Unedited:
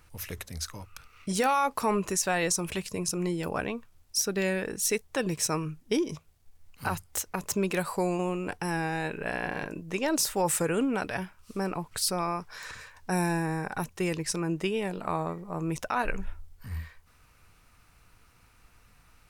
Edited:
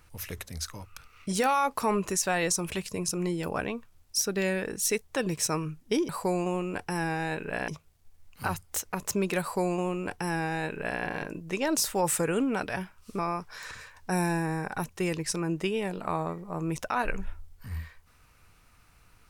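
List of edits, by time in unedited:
7.82–9.41 s: copy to 6.09 s
11.60–12.19 s: delete

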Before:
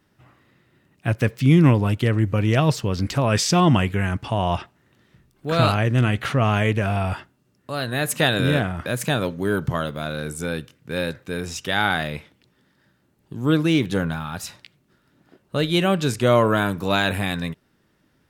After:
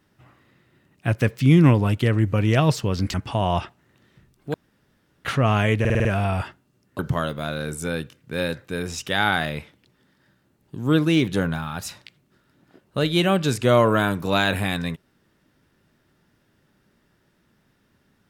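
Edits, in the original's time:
3.14–4.11 s: delete
5.51–6.22 s: room tone
6.77 s: stutter 0.05 s, 6 plays
7.71–9.57 s: delete

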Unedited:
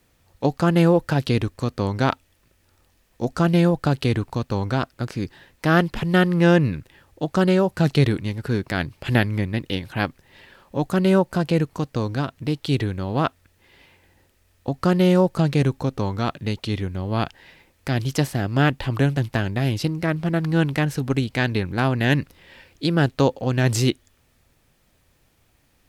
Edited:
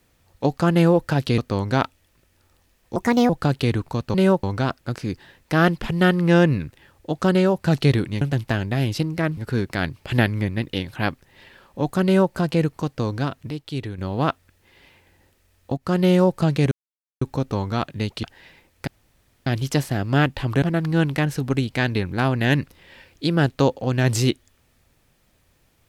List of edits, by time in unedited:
1.38–1.66 s: delete
3.24–3.71 s: speed 141%
11.01–11.30 s: copy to 4.56 s
12.47–12.95 s: gain -7 dB
14.74–15.05 s: fade in equal-power, from -17.5 dB
15.68 s: insert silence 0.50 s
16.70–17.26 s: delete
17.90 s: insert room tone 0.59 s
19.06–20.22 s: move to 8.34 s

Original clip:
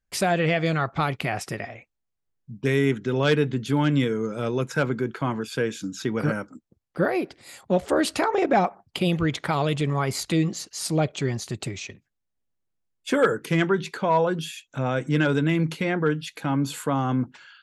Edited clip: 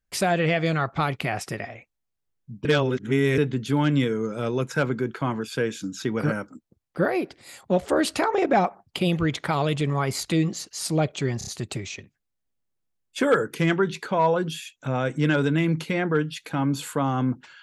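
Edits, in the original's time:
2.65–3.38 s: reverse
11.38 s: stutter 0.03 s, 4 plays

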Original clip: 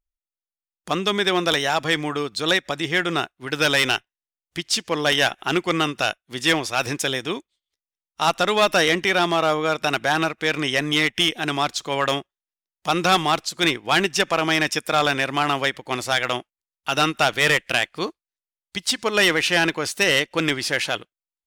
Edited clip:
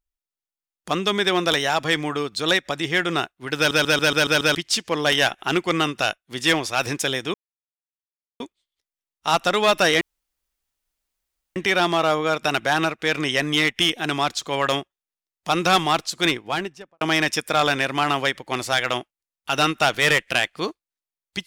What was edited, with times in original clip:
3.57 s: stutter in place 0.14 s, 7 plays
7.34 s: insert silence 1.06 s
8.95 s: insert room tone 1.55 s
13.60–14.40 s: studio fade out

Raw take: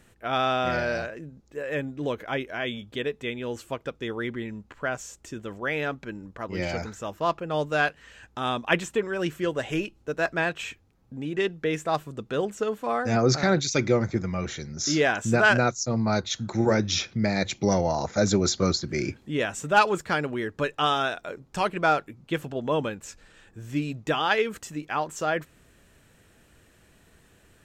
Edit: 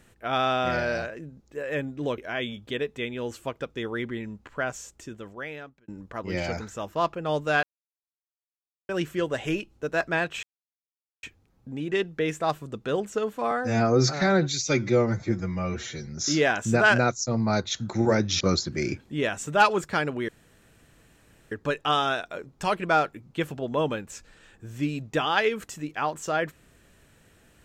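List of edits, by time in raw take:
2.18–2.43 s: delete
5.05–6.13 s: fade out
7.88–9.14 s: mute
10.68 s: insert silence 0.80 s
12.96–14.67 s: stretch 1.5×
17.00–18.57 s: delete
20.45 s: insert room tone 1.23 s

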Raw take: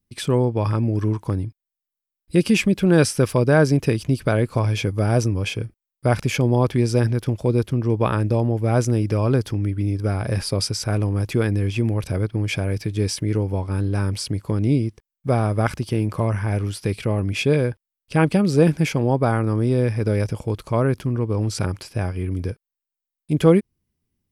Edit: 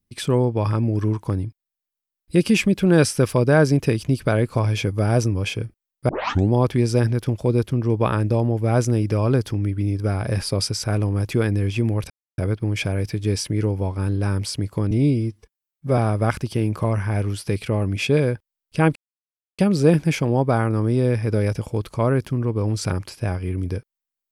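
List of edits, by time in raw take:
6.09 s: tape start 0.43 s
12.10 s: insert silence 0.28 s
14.63–15.34 s: stretch 1.5×
18.32 s: insert silence 0.63 s

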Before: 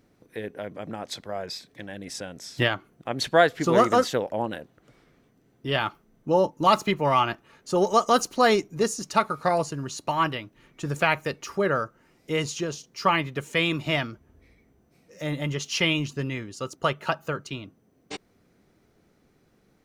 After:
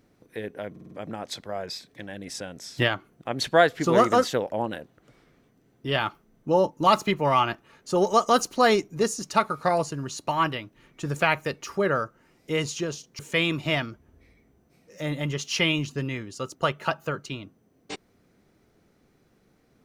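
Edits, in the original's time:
0.71 s: stutter 0.05 s, 5 plays
12.99–13.40 s: delete

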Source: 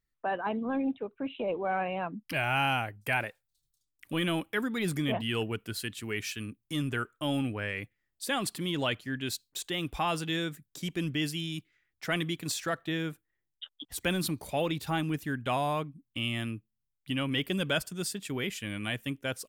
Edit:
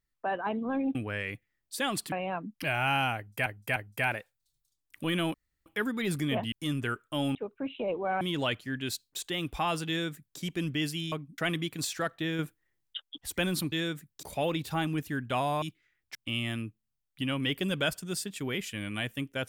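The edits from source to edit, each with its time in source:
0.95–1.81 s: swap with 7.44–8.61 s
2.85–3.15 s: loop, 3 plays
4.43 s: insert room tone 0.32 s
5.29–6.61 s: delete
10.28–10.79 s: copy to 14.39 s
11.52–12.05 s: swap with 15.78–16.04 s
13.06–13.67 s: gain +4.5 dB

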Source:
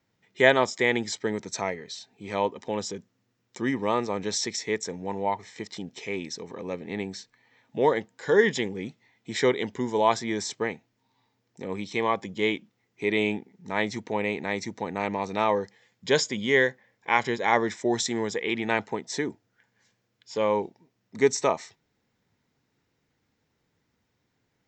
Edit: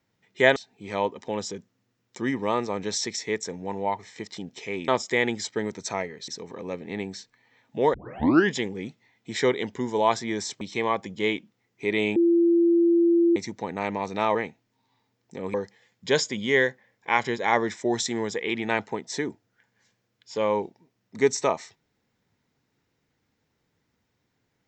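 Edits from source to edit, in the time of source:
0.56–1.96 s: move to 6.28 s
7.94 s: tape start 0.56 s
10.61–11.80 s: move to 15.54 s
13.35–14.55 s: bleep 340 Hz -16 dBFS

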